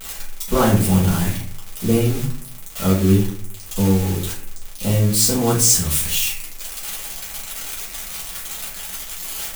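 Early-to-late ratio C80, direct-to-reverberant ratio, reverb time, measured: 9.5 dB, -7.5 dB, 0.55 s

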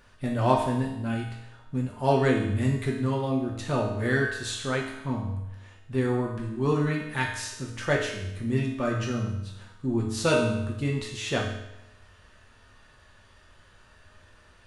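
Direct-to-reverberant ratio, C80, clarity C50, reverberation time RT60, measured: -2.5 dB, 6.5 dB, 3.5 dB, 0.90 s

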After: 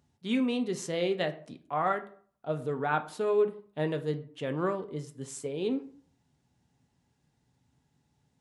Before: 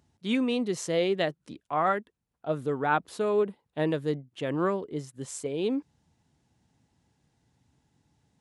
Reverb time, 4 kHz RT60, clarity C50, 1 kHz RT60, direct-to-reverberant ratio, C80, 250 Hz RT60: 0.50 s, 0.30 s, 14.5 dB, 0.50 s, 7.0 dB, 19.0 dB, 0.55 s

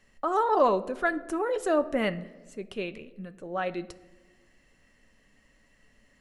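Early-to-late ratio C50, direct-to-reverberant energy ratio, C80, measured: 17.0 dB, 10.0 dB, 19.0 dB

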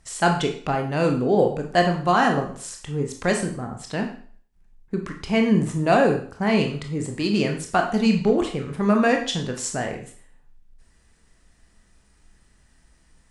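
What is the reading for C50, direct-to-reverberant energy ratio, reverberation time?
8.0 dB, 3.0 dB, 0.50 s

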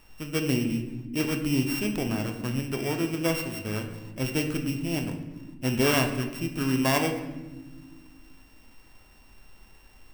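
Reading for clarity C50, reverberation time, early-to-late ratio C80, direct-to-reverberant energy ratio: 8.0 dB, not exponential, 10.0 dB, 4.0 dB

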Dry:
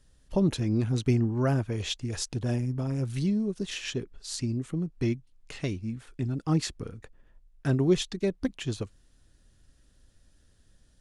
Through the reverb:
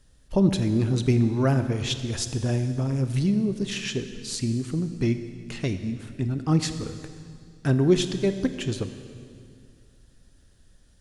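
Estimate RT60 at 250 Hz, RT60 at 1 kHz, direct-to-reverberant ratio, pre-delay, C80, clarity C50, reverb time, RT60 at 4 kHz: 2.6 s, 2.1 s, 9.0 dB, 23 ms, 10.5 dB, 10.0 dB, 2.2 s, 2.1 s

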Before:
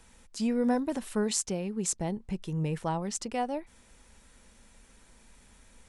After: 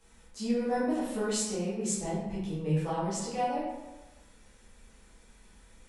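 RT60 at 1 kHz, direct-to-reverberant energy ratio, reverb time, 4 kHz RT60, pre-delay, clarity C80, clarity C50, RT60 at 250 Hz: 1.1 s, -10.0 dB, 1.1 s, 0.70 s, 9 ms, 3.0 dB, 0.5 dB, 1.1 s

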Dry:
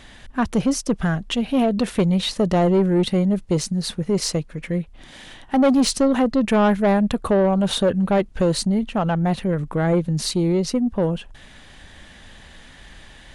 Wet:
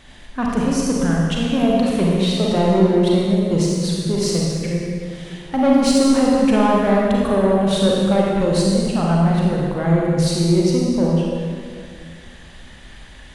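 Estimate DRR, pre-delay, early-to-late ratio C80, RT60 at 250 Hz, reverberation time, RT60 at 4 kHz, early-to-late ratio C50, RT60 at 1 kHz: -3.5 dB, 33 ms, 0.0 dB, 2.5 s, 2.0 s, 1.7 s, -2.0 dB, 1.9 s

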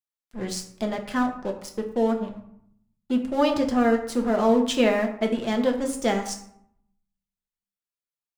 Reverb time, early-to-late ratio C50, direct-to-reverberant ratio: 0.70 s, 9.0 dB, 3.0 dB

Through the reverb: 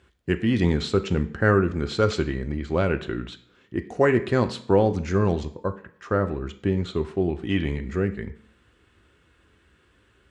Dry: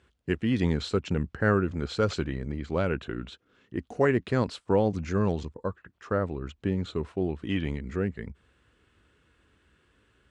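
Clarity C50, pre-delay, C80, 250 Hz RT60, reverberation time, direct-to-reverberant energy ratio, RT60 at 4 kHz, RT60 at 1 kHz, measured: 14.5 dB, 3 ms, 18.0 dB, 0.65 s, 0.55 s, 8.0 dB, 0.50 s, 0.60 s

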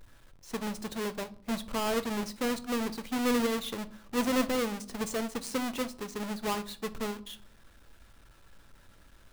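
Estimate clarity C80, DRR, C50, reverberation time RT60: 23.0 dB, 10.0 dB, 18.5 dB, 0.55 s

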